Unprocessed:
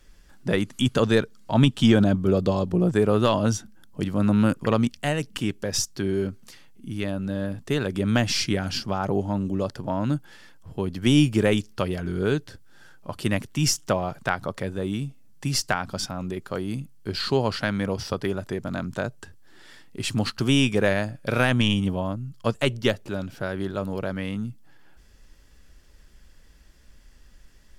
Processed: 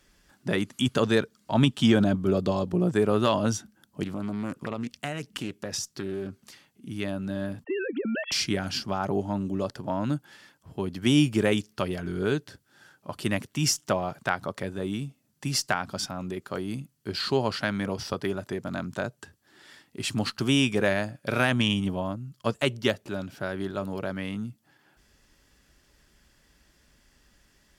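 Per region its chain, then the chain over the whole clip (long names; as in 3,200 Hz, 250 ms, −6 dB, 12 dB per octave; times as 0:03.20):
0:04.03–0:06.89: downward compressor 5 to 1, threshold −25 dBFS + highs frequency-modulated by the lows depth 0.29 ms
0:07.64–0:08.32: three sine waves on the formant tracks + downward compressor 4 to 1, threshold −24 dBFS
whole clip: high-pass filter 130 Hz 6 dB per octave; notch filter 490 Hz, Q 12; level −1.5 dB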